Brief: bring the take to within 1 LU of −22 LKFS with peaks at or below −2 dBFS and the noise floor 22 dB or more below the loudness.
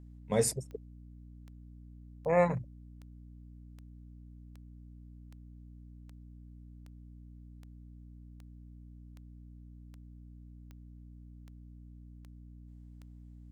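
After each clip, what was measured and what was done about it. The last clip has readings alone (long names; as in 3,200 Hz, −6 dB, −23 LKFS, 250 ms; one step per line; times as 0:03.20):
number of clicks 17; mains hum 60 Hz; hum harmonics up to 300 Hz; level of the hum −48 dBFS; integrated loudness −32.0 LKFS; sample peak −14.0 dBFS; target loudness −22.0 LKFS
→ click removal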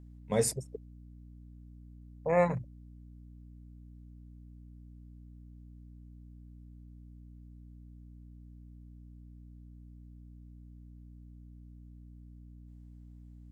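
number of clicks 0; mains hum 60 Hz; hum harmonics up to 300 Hz; level of the hum −48 dBFS
→ mains-hum notches 60/120/180/240/300 Hz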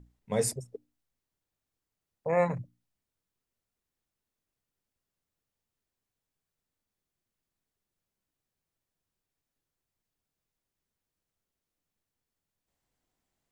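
mains hum none found; integrated loudness −31.0 LKFS; sample peak −14.5 dBFS; target loudness −22.0 LKFS
→ level +9 dB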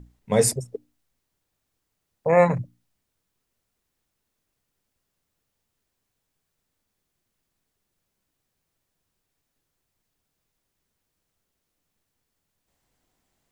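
integrated loudness −22.0 LKFS; sample peak −5.5 dBFS; background noise floor −79 dBFS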